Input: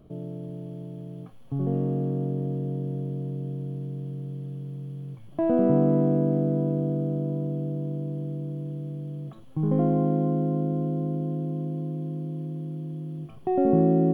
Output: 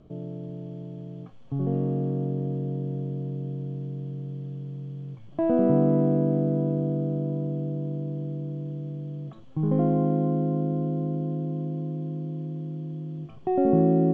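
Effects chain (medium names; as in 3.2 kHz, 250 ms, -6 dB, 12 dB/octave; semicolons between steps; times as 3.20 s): steep low-pass 7.5 kHz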